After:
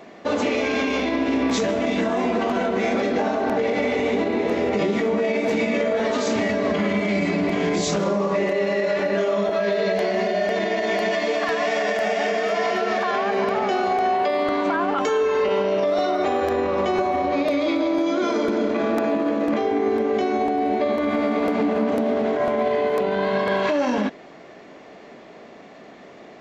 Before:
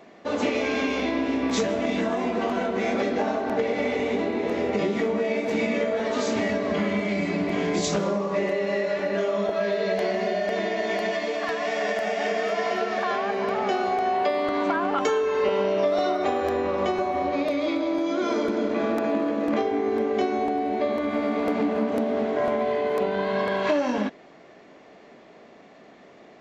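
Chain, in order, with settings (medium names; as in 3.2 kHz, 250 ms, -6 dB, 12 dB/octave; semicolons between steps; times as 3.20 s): peak limiter -19.5 dBFS, peak gain reduction 7 dB; trim +6 dB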